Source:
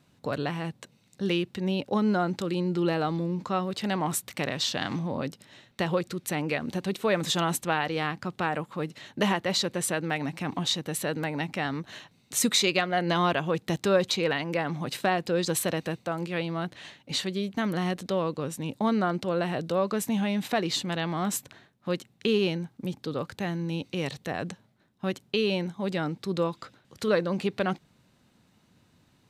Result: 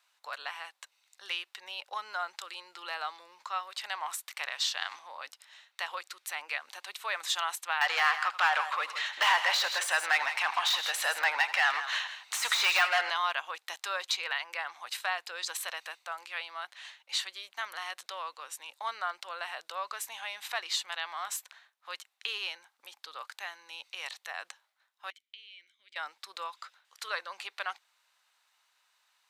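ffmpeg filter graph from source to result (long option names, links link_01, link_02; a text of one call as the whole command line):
ffmpeg -i in.wav -filter_complex "[0:a]asettb=1/sr,asplit=3[link_01][link_02][link_03];[link_01]atrim=end=7.814[link_04];[link_02]atrim=start=7.81:end=13.1,asetpts=PTS-STARTPTS,afade=type=in:duration=0.004:curve=qsin,afade=type=out:start_time=5.286:duration=0.004:curve=qsin,asplit=2[link_05][link_06];[link_06]highpass=frequency=720:poles=1,volume=23dB,asoftclip=type=tanh:threshold=-10dB[link_07];[link_05][link_07]amix=inputs=2:normalize=0,lowpass=frequency=2800:poles=1,volume=-6dB,aecho=1:1:83|163:0.158|0.266,atrim=end_sample=233289[link_08];[link_03]atrim=start=13.096[link_09];[link_04][link_08]acrossfade=duration=0.004:curve1=hsin:curve2=qsin[link_10];[link_10][link_09]acrossfade=duration=0.004:curve1=qsin:curve2=hsin,asettb=1/sr,asplit=3[link_11][link_12][link_13];[link_11]atrim=end=25.104[link_14];[link_12]atrim=start=25.1:end=25.96,asetpts=PTS-STARTPTS,afade=type=in:duration=0.004:curve=qsin,afade=type=out:start_time=0.856:duration=0.004:curve=qsin,aemphasis=mode=production:type=75kf,acompressor=threshold=-29dB:ratio=6:attack=3.2:release=140:knee=1:detection=peak,asplit=3[link_15][link_16][link_17];[link_15]bandpass=frequency=270:width_type=q:width=8,volume=0dB[link_18];[link_16]bandpass=frequency=2290:width_type=q:width=8,volume=-6dB[link_19];[link_17]bandpass=frequency=3010:width_type=q:width=8,volume=-9dB[link_20];[link_18][link_19][link_20]amix=inputs=3:normalize=0[link_21];[link_13]atrim=start=25.956[link_22];[link_14][link_21]acrossfade=duration=0.004:curve1=hsin:curve2=qsin[link_23];[link_23][link_22]acrossfade=duration=0.004:curve1=qsin:curve2=hsin,deesser=0.5,highpass=frequency=920:width=0.5412,highpass=frequency=920:width=1.3066,volume=-1.5dB" out.wav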